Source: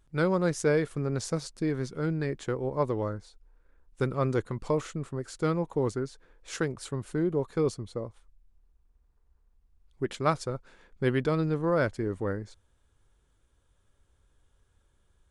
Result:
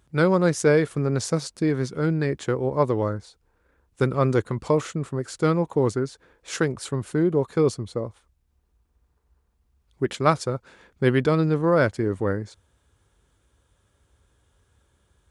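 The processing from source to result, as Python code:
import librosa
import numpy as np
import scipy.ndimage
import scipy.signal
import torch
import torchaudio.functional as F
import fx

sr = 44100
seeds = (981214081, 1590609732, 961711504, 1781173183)

y = scipy.signal.sosfilt(scipy.signal.butter(4, 52.0, 'highpass', fs=sr, output='sos'), x)
y = y * librosa.db_to_amplitude(6.5)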